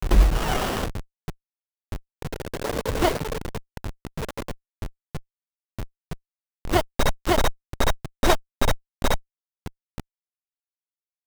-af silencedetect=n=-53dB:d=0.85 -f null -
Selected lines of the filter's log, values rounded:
silence_start: 10.00
silence_end: 11.27 | silence_duration: 1.27